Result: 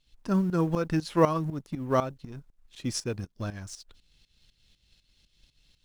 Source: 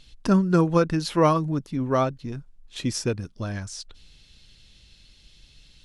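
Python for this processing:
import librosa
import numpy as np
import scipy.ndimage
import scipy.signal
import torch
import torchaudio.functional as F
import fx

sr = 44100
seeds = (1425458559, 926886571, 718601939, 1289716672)

y = fx.law_mismatch(x, sr, coded='A')
y = fx.tremolo_shape(y, sr, shape='saw_up', hz=4.0, depth_pct=80)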